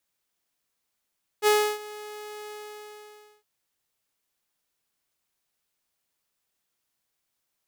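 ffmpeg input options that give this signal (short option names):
-f lavfi -i "aevalsrc='0.2*(2*mod(421*t,1)-1)':d=2.012:s=44100,afade=t=in:d=0.05,afade=t=out:st=0.05:d=0.31:silence=0.0891,afade=t=out:st=1.08:d=0.932"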